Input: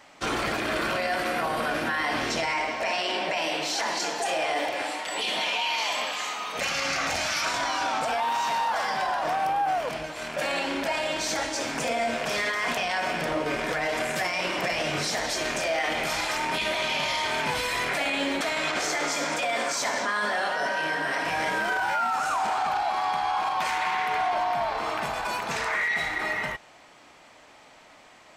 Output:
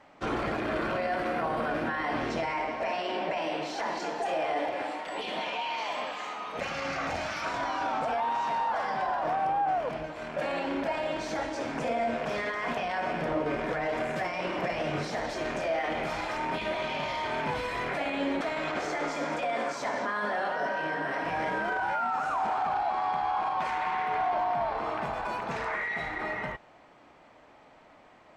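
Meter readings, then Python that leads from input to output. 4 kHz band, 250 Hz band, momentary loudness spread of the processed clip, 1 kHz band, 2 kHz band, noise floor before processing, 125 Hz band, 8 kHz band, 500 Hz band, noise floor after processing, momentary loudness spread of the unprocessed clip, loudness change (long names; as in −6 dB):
−11.0 dB, −0.5 dB, 4 LU, −2.5 dB, −6.5 dB, −52 dBFS, 0.0 dB, −16.0 dB, −1.5 dB, −56 dBFS, 3 LU, −4.5 dB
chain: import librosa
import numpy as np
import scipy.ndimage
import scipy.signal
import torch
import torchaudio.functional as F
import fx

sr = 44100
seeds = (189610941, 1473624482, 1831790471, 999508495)

y = fx.lowpass(x, sr, hz=1000.0, slope=6)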